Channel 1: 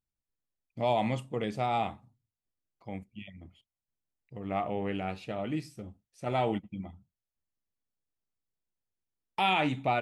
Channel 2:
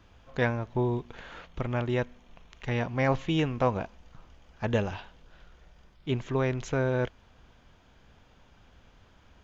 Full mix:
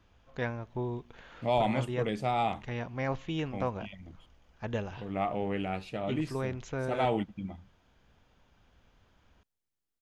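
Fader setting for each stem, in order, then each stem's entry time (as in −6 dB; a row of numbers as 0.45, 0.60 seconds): +0.5, −7.0 decibels; 0.65, 0.00 seconds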